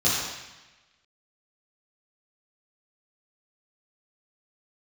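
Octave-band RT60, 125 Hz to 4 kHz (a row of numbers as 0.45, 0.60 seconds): 1.2, 1.1, 1.0, 1.1, 1.3, 1.1 seconds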